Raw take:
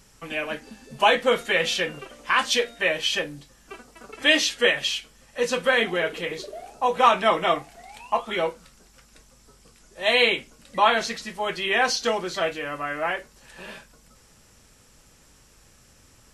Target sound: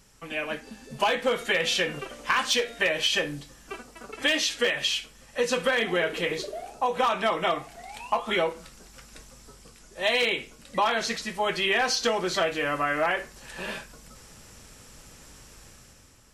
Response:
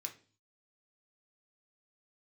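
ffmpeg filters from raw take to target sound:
-filter_complex "[0:a]dynaudnorm=framelen=140:gausssize=9:maxgain=9dB,asplit=2[link_01][link_02];[1:a]atrim=start_sample=2205,adelay=63[link_03];[link_02][link_03]afir=irnorm=-1:irlink=0,volume=-16dB[link_04];[link_01][link_04]amix=inputs=2:normalize=0,volume=8dB,asoftclip=hard,volume=-8dB,acompressor=threshold=-18dB:ratio=6,volume=-3dB"

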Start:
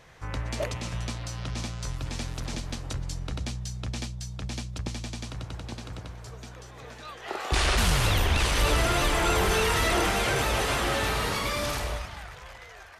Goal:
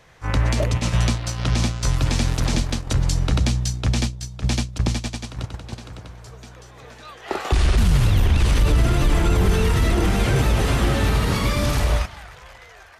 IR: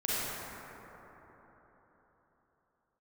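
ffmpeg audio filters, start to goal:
-filter_complex "[0:a]agate=range=-13dB:threshold=-33dB:ratio=16:detection=peak,acrossover=split=290[link_01][link_02];[link_02]acompressor=threshold=-38dB:ratio=12[link_03];[link_01][link_03]amix=inputs=2:normalize=0,alimiter=level_in=23dB:limit=-1dB:release=50:level=0:latency=1,volume=-8.5dB"

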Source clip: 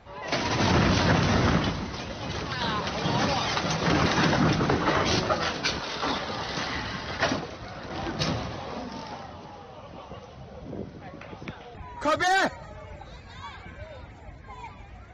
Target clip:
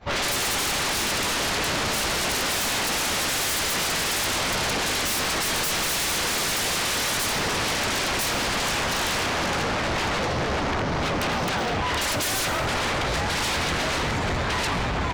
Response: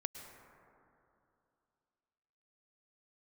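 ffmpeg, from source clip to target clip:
-filter_complex "[0:a]asettb=1/sr,asplit=3[link_01][link_02][link_03];[link_01]atrim=end=11.104[link_04];[link_02]atrim=start=11.1:end=11.89,asetpts=PTS-STARTPTS,afade=type=in:duration=0.004:curve=qsin,afade=type=out:start_time=0.786:duration=0.004:curve=qsin,acrossover=split=460|3000[link_05][link_06][link_07];[link_05]acompressor=threshold=-47dB:ratio=6[link_08];[link_08][link_06][link_07]amix=inputs=3:normalize=0[link_09];[link_03]atrim=start=11.886[link_10];[link_04][link_09]acrossfade=duration=0.004:curve1=hsin:curve2=qsin[link_11];[link_11][link_10]acrossfade=duration=0.004:curve1=qsin:curve2=hsin,asettb=1/sr,asplit=3[link_12][link_13][link_14];[link_12]atrim=end=13.614[link_15];[link_13]atrim=start=13.61:end=14.37,asetpts=PTS-STARTPTS,afade=type=in:duration=0.004:curve=qsin,afade=type=out:start_time=0.756:duration=0.004:curve=qsin,highshelf=frequency=4500:gain=9.5[link_16];[link_14]atrim=start=14.366[link_17];[link_15][link_16]acrossfade=duration=0.004:curve1=hsin:curve2=qsin[link_18];[link_18][link_17]acrossfade=duration=0.004:curve1=qsin:curve2=hsin,agate=range=-33dB:threshold=-41dB:ratio=3:detection=peak,asettb=1/sr,asplit=3[link_19][link_20][link_21];[link_19]atrim=end=6.424[link_22];[link_20]atrim=start=6.42:end=6.88,asetpts=PTS-STARTPTS,afade=type=in:duration=0.004:curve=qsin,afade=type=out:start_time=0.456:duration=0.004:curve=qsin,equalizer=frequency=170:width_type=o:width=0.34:gain=13.5[link_23];[link_21]atrim=start=6.876[link_24];[link_22][link_23]acrossfade=duration=0.004:curve1=hsin:curve2=qsin[link_25];[link_25][link_24]acrossfade=duration=0.004:curve1=qsin:curve2=hsin,acompressor=threshold=-37dB:ratio=6,asplit=9[link_26][link_27][link_28][link_29][link_30][link_31][link_32][link_33][link_34];[link_27]adelay=464,afreqshift=40,volume=-11dB[link_35];[link_28]adelay=928,afreqshift=80,volume=-14.9dB[link_36];[link_29]adelay=1392,afreqshift=120,volume=-18.8dB[link_37];[link_30]adelay=1856,afreqshift=160,volume=-22.6dB[link_38];[link_31]adelay=2320,afreqshift=200,volume=-26.5dB[link_39];[link_32]adelay=2784,afreqshift=240,volume=-30.4dB[link_40];[link_33]adelay=3248,afreqshift=280,volume=-34.3dB[link_41];[link_34]adelay=3712,afreqshift=320,volume=-38.1dB[link_42];[link_26][link_35][link_36][link_37][link_38][link_39][link_40][link_41][link_42]amix=inputs=9:normalize=0,aeval=exprs='0.0501*sin(PI/2*8.91*val(0)/0.0501)':channel_layout=same[link_43];[1:a]atrim=start_sample=2205,afade=type=out:start_time=0.33:duration=0.01,atrim=end_sample=14994[link_44];[link_43][link_44]afir=irnorm=-1:irlink=0,asoftclip=type=tanh:threshold=-28.5dB,volume=8dB"

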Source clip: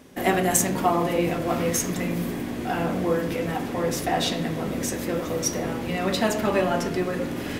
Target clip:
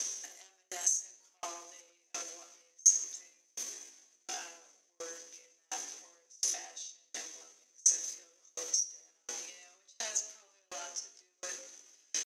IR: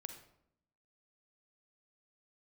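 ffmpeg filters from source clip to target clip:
-filter_complex "[0:a]atempo=0.62,aeval=exprs='0.531*sin(PI/2*2.82*val(0)/0.531)':channel_layout=same,lowpass=frequency=6200:width_type=q:width=15,lowshelf=frequency=480:gain=8.5,asplit=2[link_01][link_02];[1:a]atrim=start_sample=2205,adelay=56[link_03];[link_02][link_03]afir=irnorm=-1:irlink=0,volume=-11dB[link_04];[link_01][link_04]amix=inputs=2:normalize=0,acompressor=threshold=-23dB:ratio=6,highpass=frequency=340:width=0.5412,highpass=frequency=340:width=1.3066,aderivative,aeval=exprs='val(0)*pow(10,-40*if(lt(mod(1.4*n/s,1),2*abs(1.4)/1000),1-mod(1.4*n/s,1)/(2*abs(1.4)/1000),(mod(1.4*n/s,1)-2*abs(1.4)/1000)/(1-2*abs(1.4)/1000))/20)':channel_layout=same,volume=4.5dB"

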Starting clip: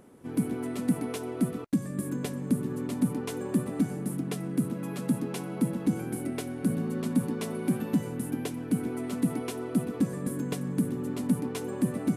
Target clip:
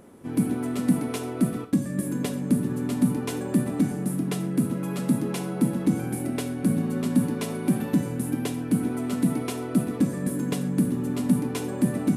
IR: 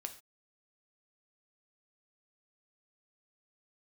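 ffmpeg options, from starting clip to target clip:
-filter_complex "[1:a]atrim=start_sample=2205[link_01];[0:a][link_01]afir=irnorm=-1:irlink=0,volume=7.5dB"

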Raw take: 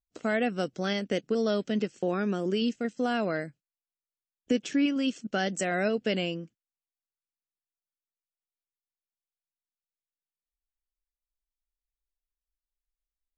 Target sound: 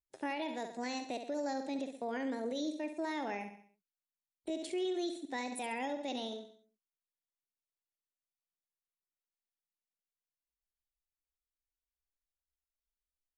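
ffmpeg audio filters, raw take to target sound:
ffmpeg -i in.wav -filter_complex "[0:a]asplit=2[link_01][link_02];[link_02]aecho=0:1:63|126|189|252|315:0.355|0.167|0.0784|0.0368|0.0173[link_03];[link_01][link_03]amix=inputs=2:normalize=0,asetrate=57191,aresample=44100,atempo=0.771105,alimiter=limit=-21dB:level=0:latency=1:release=65,volume=-8dB" out.wav

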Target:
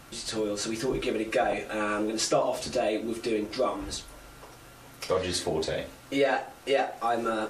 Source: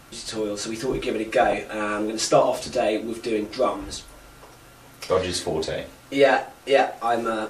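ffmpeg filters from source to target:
ffmpeg -i in.wav -af "acompressor=threshold=-24dB:ratio=2,volume=-1.5dB" out.wav

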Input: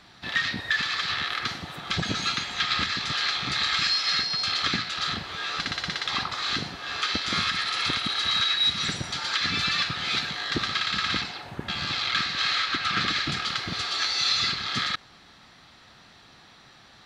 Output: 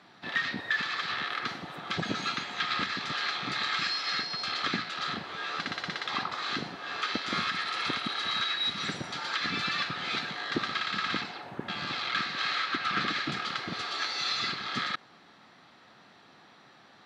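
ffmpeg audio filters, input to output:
ffmpeg -i in.wav -af "highpass=190,highshelf=frequency=2800:gain=-11.5" out.wav

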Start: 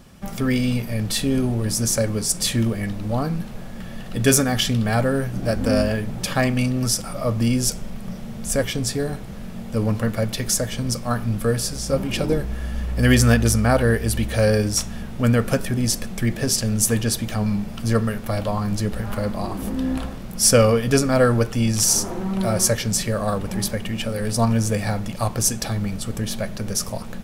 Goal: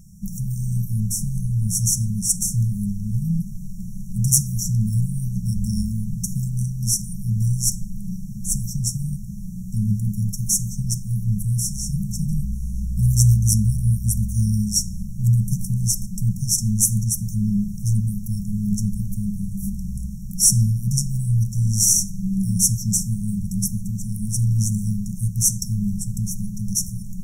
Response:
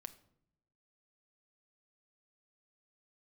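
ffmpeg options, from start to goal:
-filter_complex "[0:a]asplit=2[link_01][link_02];[1:a]atrim=start_sample=2205,asetrate=41895,aresample=44100[link_03];[link_02][link_03]afir=irnorm=-1:irlink=0,volume=6dB[link_04];[link_01][link_04]amix=inputs=2:normalize=0,afftfilt=real='re*(1-between(b*sr/4096,220,5400))':imag='im*(1-between(b*sr/4096,220,5400))':win_size=4096:overlap=0.75,volume=-4dB"

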